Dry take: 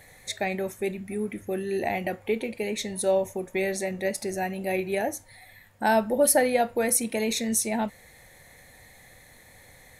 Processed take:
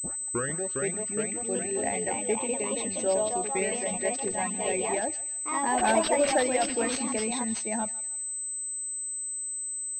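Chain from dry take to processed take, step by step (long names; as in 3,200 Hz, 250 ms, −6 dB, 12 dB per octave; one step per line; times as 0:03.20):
turntable start at the beginning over 0.63 s
noise gate −40 dBFS, range −33 dB
reverb reduction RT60 1.1 s
delay with pitch and tempo change per echo 447 ms, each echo +2 semitones, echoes 3
on a send: feedback echo with a high-pass in the loop 158 ms, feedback 51%, high-pass 1,000 Hz, level −15.5 dB
on the sum: switching amplifier with a slow clock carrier 8,100 Hz
level −3 dB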